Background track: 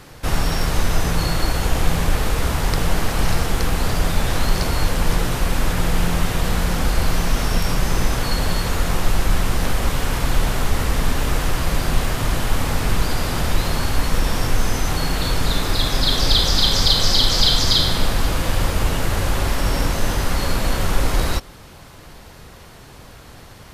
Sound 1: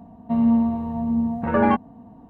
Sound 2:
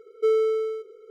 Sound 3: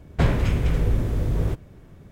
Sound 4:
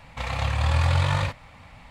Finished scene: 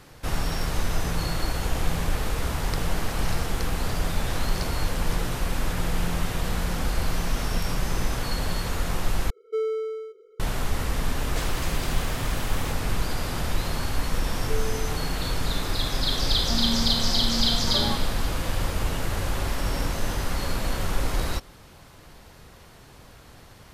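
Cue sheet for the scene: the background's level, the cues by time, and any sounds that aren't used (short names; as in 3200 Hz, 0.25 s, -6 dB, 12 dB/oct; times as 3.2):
background track -7 dB
9.3 replace with 2 -5.5 dB
11.17 add 3 -14 dB + spectral compressor 4:1
14.26 add 2 -12.5 dB
16.2 add 1 -5.5 dB + compressor 2:1, threshold -25 dBFS
not used: 4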